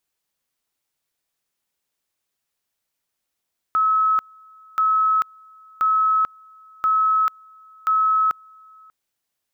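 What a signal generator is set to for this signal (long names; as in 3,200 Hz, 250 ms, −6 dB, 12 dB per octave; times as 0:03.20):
tone at two levels in turn 1,290 Hz −15 dBFS, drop 29.5 dB, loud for 0.44 s, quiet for 0.59 s, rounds 5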